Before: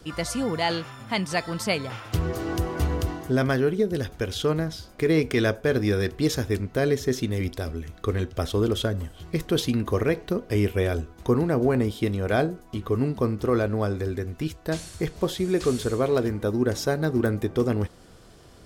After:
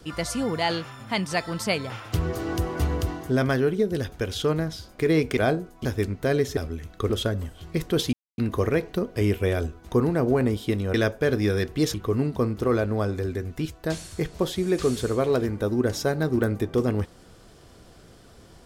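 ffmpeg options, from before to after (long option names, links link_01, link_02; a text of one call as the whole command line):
ffmpeg -i in.wav -filter_complex "[0:a]asplit=8[link_01][link_02][link_03][link_04][link_05][link_06][link_07][link_08];[link_01]atrim=end=5.372[link_09];[link_02]atrim=start=12.278:end=12.762[link_10];[link_03]atrim=start=6.368:end=7.092[link_11];[link_04]atrim=start=7.608:end=8.142[link_12];[link_05]atrim=start=8.688:end=9.72,asetpts=PTS-STARTPTS,afade=type=out:start_time=1.028:duration=0.004:curve=hsin,apad=pad_dur=0.25[link_13];[link_06]atrim=start=9.72:end=12.282,asetpts=PTS-STARTPTS,afade=type=in:duration=0.004:curve=hsin[link_14];[link_07]atrim=start=5.368:end=6.372[link_15];[link_08]atrim=start=12.758[link_16];[link_09][link_10]acrossfade=duration=0.004:curve1=hsin:curve2=hsin[link_17];[link_17][link_11]acrossfade=duration=0.004:curve1=hsin:curve2=hsin[link_18];[link_18][link_12]acrossfade=duration=0.004:curve1=hsin:curve2=hsin[link_19];[link_13][link_14]concat=n=2:v=0:a=1[link_20];[link_19][link_20]acrossfade=duration=0.004:curve1=hsin:curve2=hsin[link_21];[link_21][link_15]acrossfade=duration=0.004:curve1=hsin:curve2=hsin[link_22];[link_22][link_16]acrossfade=duration=0.004:curve1=hsin:curve2=hsin" out.wav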